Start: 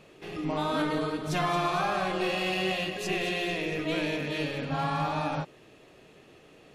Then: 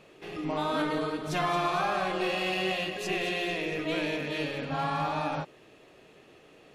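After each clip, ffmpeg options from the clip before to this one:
-af "bass=f=250:g=-4,treble=f=4k:g=-2"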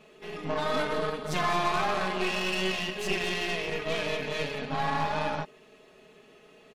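-af "aecho=1:1:4.7:0.88,aeval=exprs='0.2*(cos(1*acos(clip(val(0)/0.2,-1,1)))-cos(1*PI/2))+0.0282*(cos(6*acos(clip(val(0)/0.2,-1,1)))-cos(6*PI/2))':c=same,volume=-2.5dB"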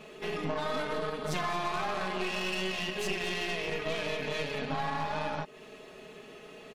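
-af "acompressor=threshold=-37dB:ratio=4,volume=6.5dB"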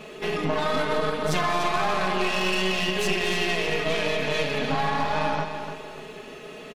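-af "aecho=1:1:295|590|885|1180:0.376|0.135|0.0487|0.0175,volume=7.5dB"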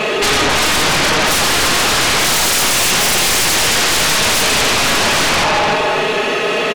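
-filter_complex "[0:a]asplit=2[a][b];[b]highpass=f=720:p=1,volume=17dB,asoftclip=type=tanh:threshold=-10.5dB[c];[a][c]amix=inputs=2:normalize=0,lowpass=f=3.7k:p=1,volume=-6dB,aeval=exprs='0.299*sin(PI/2*5.01*val(0)/0.299)':c=same"

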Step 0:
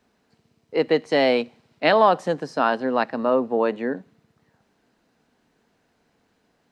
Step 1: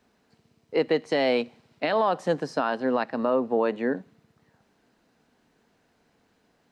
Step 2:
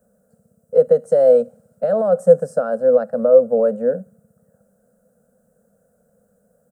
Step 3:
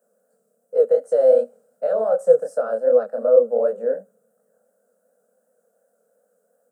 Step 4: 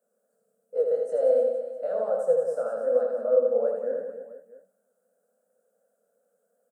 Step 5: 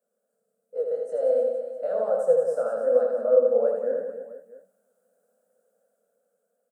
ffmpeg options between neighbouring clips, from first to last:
-af "alimiter=limit=-13dB:level=0:latency=1:release=252"
-af "firequalizer=gain_entry='entry(140,0);entry(200,9);entry(320,-25);entry(510,14);entry(940,-19);entry(1400,-2);entry(2100,-29);entry(4000,-24);entry(8300,9)':delay=0.05:min_phase=1,volume=3dB"
-af "highpass=f=300:w=0.5412,highpass=f=300:w=1.3066,flanger=delay=20:depth=7.1:speed=2.7"
-af "aecho=1:1:80|180|305|461.2|656.6:0.631|0.398|0.251|0.158|0.1,volume=-8.5dB"
-af "dynaudnorm=f=440:g=7:m=7.5dB,volume=-4dB"

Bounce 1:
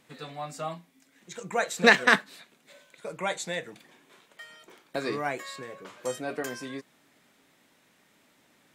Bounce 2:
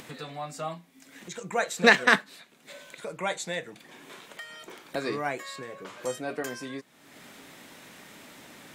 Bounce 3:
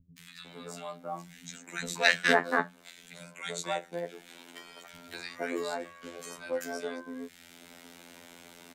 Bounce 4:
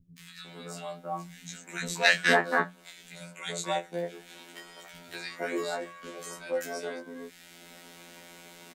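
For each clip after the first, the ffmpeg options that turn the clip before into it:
-af "acompressor=mode=upward:threshold=-35dB:ratio=2.5"
-filter_complex "[0:a]afftfilt=real='hypot(re,im)*cos(PI*b)':imag='0':win_size=2048:overlap=0.75,bandreject=f=60:t=h:w=6,bandreject=f=120:t=h:w=6,bandreject=f=180:t=h:w=6,acrossover=split=160|1500[a][b][c];[c]adelay=180[d];[b]adelay=460[e];[a][e][d]amix=inputs=3:normalize=0,volume=1.5dB"
-filter_complex "[0:a]asplit=2[a][b];[b]adelay=17,volume=-2dB[c];[a][c]amix=inputs=2:normalize=0"

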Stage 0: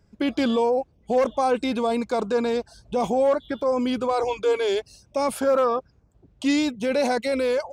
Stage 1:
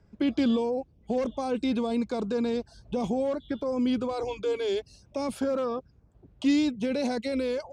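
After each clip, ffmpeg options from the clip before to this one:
-filter_complex "[0:a]aemphasis=mode=reproduction:type=50fm,acrossover=split=360|3000[a][b][c];[b]acompressor=threshold=-43dB:ratio=2[d];[a][d][c]amix=inputs=3:normalize=0"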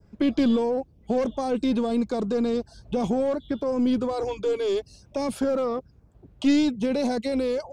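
-filter_complex "[0:a]adynamicequalizer=threshold=0.00316:dfrequency=2300:dqfactor=0.82:tfrequency=2300:tqfactor=0.82:attack=5:release=100:ratio=0.375:range=2.5:mode=cutabove:tftype=bell,asplit=2[a][b];[b]aeval=exprs='clip(val(0),-1,0.0355)':c=same,volume=-4dB[c];[a][c]amix=inputs=2:normalize=0"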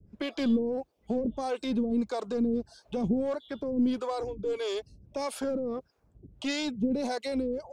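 -filter_complex "[0:a]acrossover=split=460[a][b];[a]aeval=exprs='val(0)*(1-1/2+1/2*cos(2*PI*1.6*n/s))':c=same[c];[b]aeval=exprs='val(0)*(1-1/2-1/2*cos(2*PI*1.6*n/s))':c=same[d];[c][d]amix=inputs=2:normalize=0"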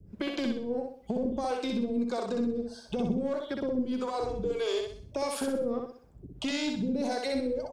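-af "acompressor=threshold=-33dB:ratio=6,aecho=1:1:63|126|189|252|315:0.668|0.261|0.102|0.0396|0.0155,volume=4dB"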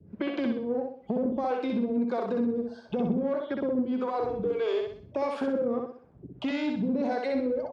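-filter_complex "[0:a]asplit=2[a][b];[b]asoftclip=type=tanh:threshold=-31dB,volume=-9dB[c];[a][c]amix=inputs=2:normalize=0,highpass=120,lowpass=2.2k,volume=1dB"

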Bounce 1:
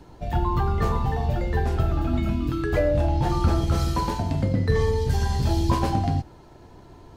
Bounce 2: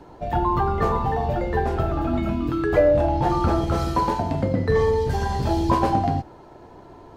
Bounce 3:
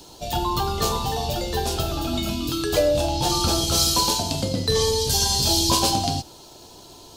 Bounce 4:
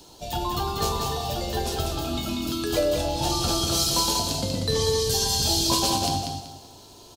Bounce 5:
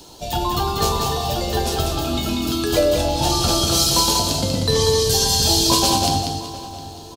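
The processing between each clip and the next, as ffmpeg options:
-af "equalizer=f=680:w=0.33:g=11,volume=-4.5dB"
-af "aexciter=amount=10.5:drive=8.3:freq=3k,volume=-3dB"
-af "aecho=1:1:190|380|570|760:0.596|0.179|0.0536|0.0161,volume=-4dB"
-filter_complex "[0:a]asplit=2[a][b];[b]adelay=708,lowpass=f=3.3k:p=1,volume=-16dB,asplit=2[c][d];[d]adelay=708,lowpass=f=3.3k:p=1,volume=0.41,asplit=2[e][f];[f]adelay=708,lowpass=f=3.3k:p=1,volume=0.41,asplit=2[g][h];[h]adelay=708,lowpass=f=3.3k:p=1,volume=0.41[i];[a][c][e][g][i]amix=inputs=5:normalize=0,volume=6dB"

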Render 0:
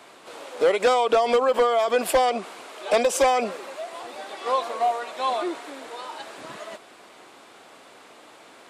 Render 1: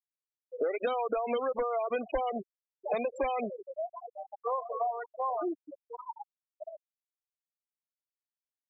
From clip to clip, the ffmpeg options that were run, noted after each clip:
-filter_complex "[0:a]aemphasis=mode=reproduction:type=cd,afftfilt=real='re*gte(hypot(re,im),0.112)':imag='im*gte(hypot(re,im),0.112)':win_size=1024:overlap=0.75,acrossover=split=180|3000[a][b][c];[b]acompressor=threshold=-30dB:ratio=5[d];[a][d][c]amix=inputs=3:normalize=0"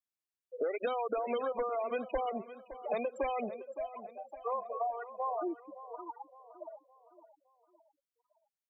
-af "aecho=1:1:564|1128|1692|2256:0.188|0.0791|0.0332|0.014,volume=-3dB"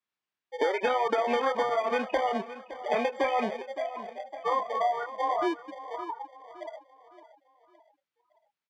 -filter_complex "[0:a]acrossover=split=610[a][b];[a]acrusher=samples=33:mix=1:aa=0.000001[c];[b]asplit=2[d][e];[e]adelay=28,volume=-2.5dB[f];[d][f]amix=inputs=2:normalize=0[g];[c][g]amix=inputs=2:normalize=0,highpass=130,lowpass=3.2k,volume=8dB"

